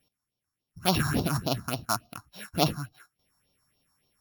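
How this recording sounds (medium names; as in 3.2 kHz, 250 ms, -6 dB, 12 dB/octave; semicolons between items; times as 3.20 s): a buzz of ramps at a fixed pitch in blocks of 8 samples; phasing stages 4, 3.5 Hz, lowest notch 460–1700 Hz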